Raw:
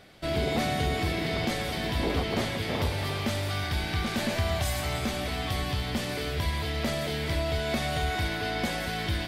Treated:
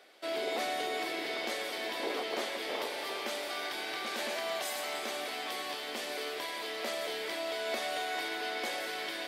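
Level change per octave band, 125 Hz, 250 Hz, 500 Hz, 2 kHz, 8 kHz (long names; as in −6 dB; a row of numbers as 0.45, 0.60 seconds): below −35 dB, −13.0 dB, −4.0 dB, −3.5 dB, −3.5 dB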